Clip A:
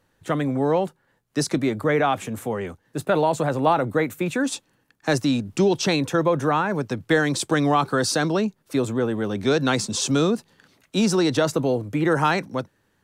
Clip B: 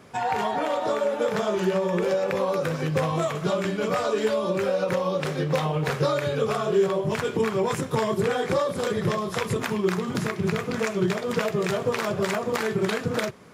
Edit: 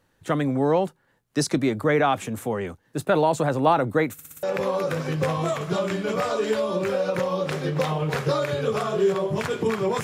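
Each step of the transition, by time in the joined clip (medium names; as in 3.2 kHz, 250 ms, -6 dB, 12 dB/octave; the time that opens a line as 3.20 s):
clip A
4.13 s: stutter in place 0.06 s, 5 plays
4.43 s: go over to clip B from 2.17 s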